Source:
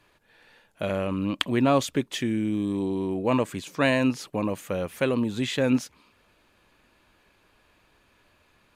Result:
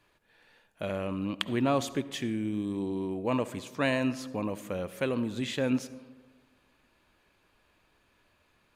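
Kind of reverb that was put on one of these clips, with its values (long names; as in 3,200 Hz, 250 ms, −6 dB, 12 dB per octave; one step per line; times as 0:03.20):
comb and all-pass reverb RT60 1.4 s, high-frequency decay 0.4×, pre-delay 30 ms, DRR 15 dB
level −5.5 dB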